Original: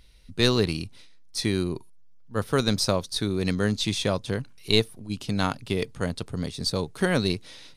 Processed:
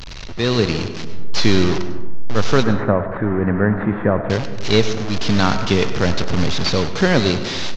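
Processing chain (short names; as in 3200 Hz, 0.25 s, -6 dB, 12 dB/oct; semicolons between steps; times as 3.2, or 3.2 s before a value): delta modulation 32 kbps, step -26.5 dBFS; 2.63–4.3 elliptic low-pass 1800 Hz, stop band 80 dB; feedback echo 98 ms, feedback 36%, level -17.5 dB; digital reverb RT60 1.3 s, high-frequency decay 0.35×, pre-delay 60 ms, DRR 10 dB; AGC gain up to 11 dB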